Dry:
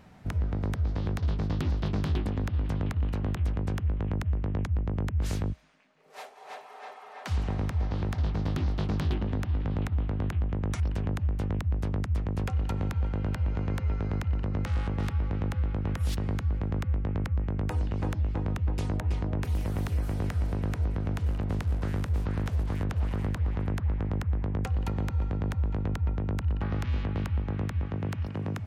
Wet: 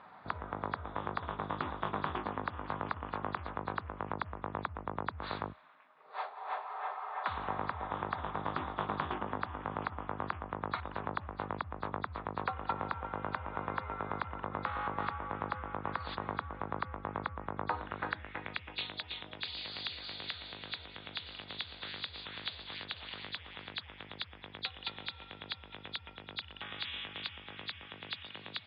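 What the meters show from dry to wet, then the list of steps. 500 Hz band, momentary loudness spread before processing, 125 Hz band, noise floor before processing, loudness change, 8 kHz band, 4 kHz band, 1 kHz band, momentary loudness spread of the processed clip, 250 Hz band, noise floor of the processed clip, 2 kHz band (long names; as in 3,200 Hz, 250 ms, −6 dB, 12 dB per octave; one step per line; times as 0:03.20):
−4.0 dB, 1 LU, −20.0 dB, −47 dBFS, −9.0 dB, can't be measured, +7.0 dB, +5.5 dB, 6 LU, −12.0 dB, −54 dBFS, +2.5 dB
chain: hearing-aid frequency compression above 3,300 Hz 4 to 1
band-pass filter sweep 1,100 Hz → 3,400 Hz, 0:17.70–0:18.97
level +10.5 dB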